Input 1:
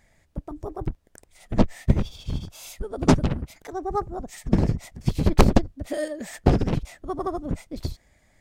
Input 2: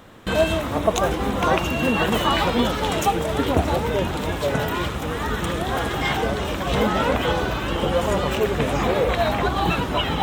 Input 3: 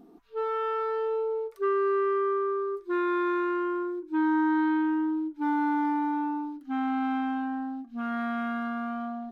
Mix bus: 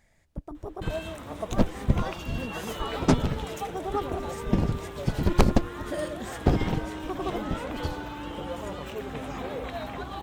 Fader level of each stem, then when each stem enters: −4.0, −14.5, −14.0 decibels; 0.00, 0.55, 2.30 seconds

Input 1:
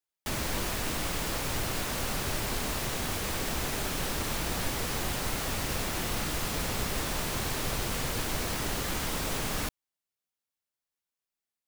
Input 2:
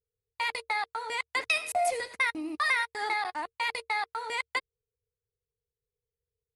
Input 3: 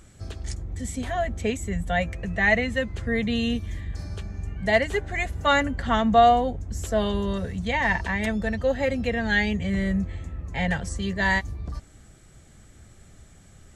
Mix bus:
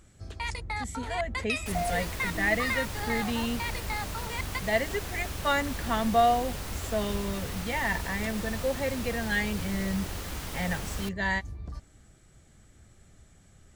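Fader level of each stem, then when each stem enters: −6.5, −4.5, −6.0 decibels; 1.40, 0.00, 0.00 seconds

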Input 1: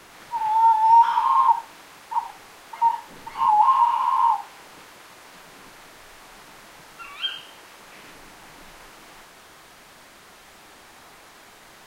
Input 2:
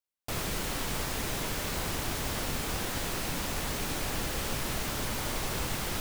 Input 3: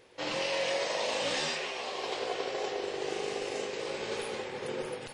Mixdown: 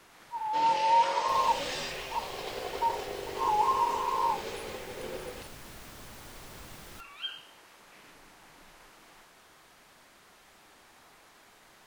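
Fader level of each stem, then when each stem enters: −9.5, −15.0, −3.5 decibels; 0.00, 1.00, 0.35 seconds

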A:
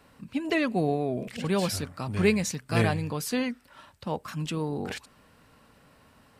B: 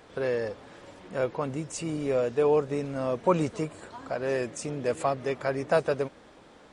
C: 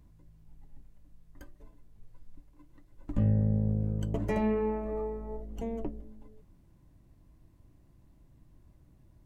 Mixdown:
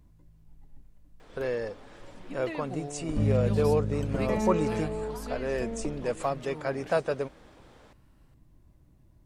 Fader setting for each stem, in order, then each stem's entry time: −13.0, −2.5, 0.0 decibels; 1.95, 1.20, 0.00 seconds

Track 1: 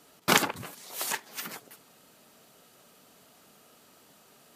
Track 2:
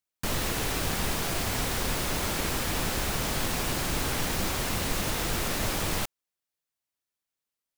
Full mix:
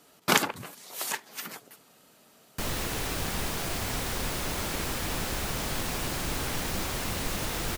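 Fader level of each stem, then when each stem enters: −0.5, −2.5 decibels; 0.00, 2.35 seconds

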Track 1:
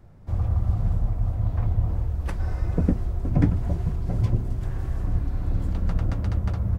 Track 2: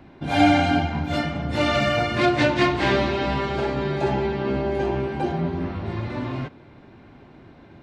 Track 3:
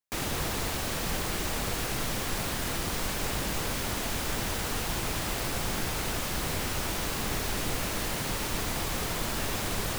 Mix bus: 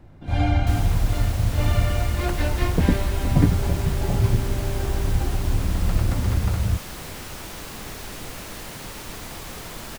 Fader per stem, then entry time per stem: +2.5, −10.0, −4.5 decibels; 0.00, 0.00, 0.55 seconds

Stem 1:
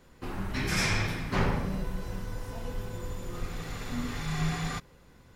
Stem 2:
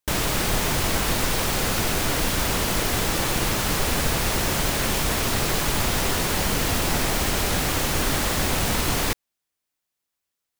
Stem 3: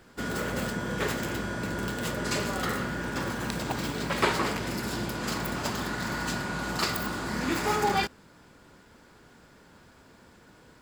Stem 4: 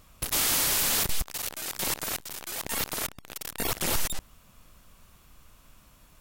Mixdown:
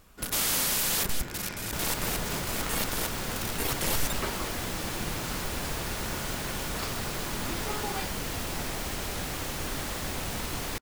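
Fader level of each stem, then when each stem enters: −14.0, −10.5, −10.5, −2.0 decibels; 0.65, 1.65, 0.00, 0.00 seconds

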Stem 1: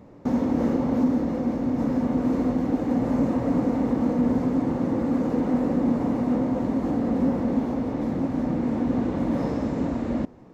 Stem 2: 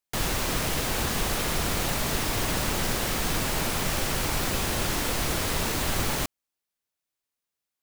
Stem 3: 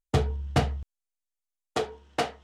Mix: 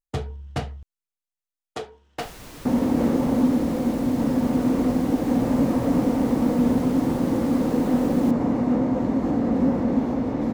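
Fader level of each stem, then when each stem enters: +2.0, −15.5, −4.5 decibels; 2.40, 2.05, 0.00 seconds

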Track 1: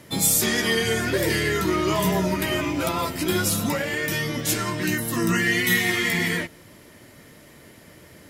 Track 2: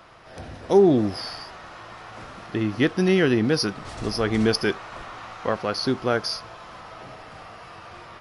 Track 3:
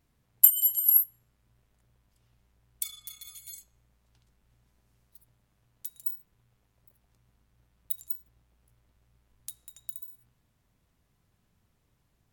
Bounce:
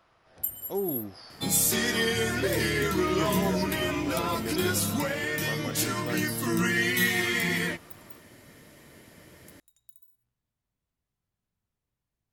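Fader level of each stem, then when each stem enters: −4.0, −15.0, −14.0 decibels; 1.30, 0.00, 0.00 seconds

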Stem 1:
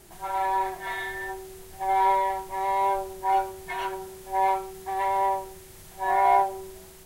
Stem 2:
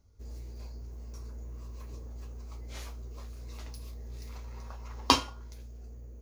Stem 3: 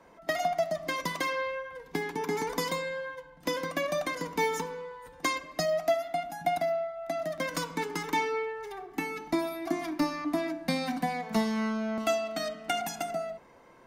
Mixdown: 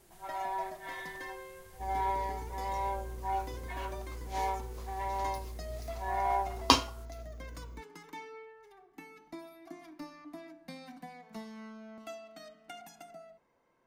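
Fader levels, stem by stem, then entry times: −10.5, 0.0, −17.0 decibels; 0.00, 1.60, 0.00 seconds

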